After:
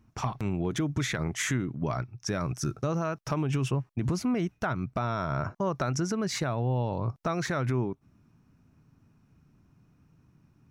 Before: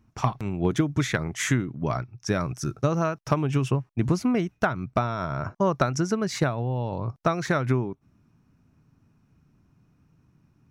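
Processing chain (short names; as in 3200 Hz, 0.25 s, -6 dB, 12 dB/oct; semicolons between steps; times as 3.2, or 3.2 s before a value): limiter -20 dBFS, peak gain reduction 8.5 dB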